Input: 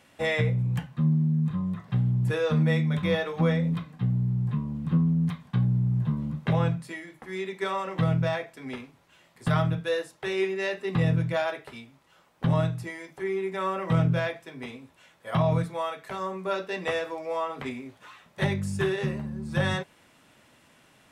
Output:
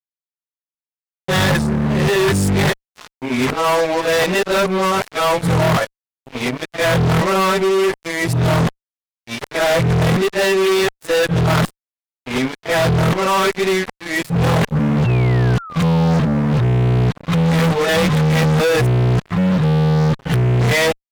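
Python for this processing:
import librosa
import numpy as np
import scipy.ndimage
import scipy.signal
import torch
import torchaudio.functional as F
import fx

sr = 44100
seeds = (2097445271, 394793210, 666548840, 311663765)

y = np.flip(x).copy()
y = fx.noise_reduce_blind(y, sr, reduce_db=7)
y = fx.fuzz(y, sr, gain_db=36.0, gate_db=-43.0)
y = fx.spec_paint(y, sr, seeds[0], shape='fall', start_s=15.04, length_s=1.41, low_hz=490.0, high_hz=2800.0, level_db=-33.0)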